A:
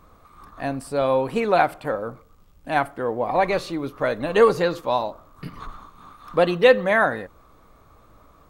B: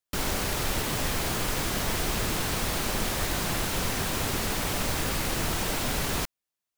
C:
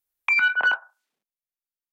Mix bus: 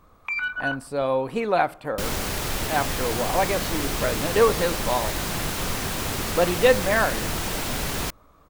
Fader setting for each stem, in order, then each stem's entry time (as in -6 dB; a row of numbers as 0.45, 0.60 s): -3.0, +1.0, -7.5 dB; 0.00, 1.85, 0.00 s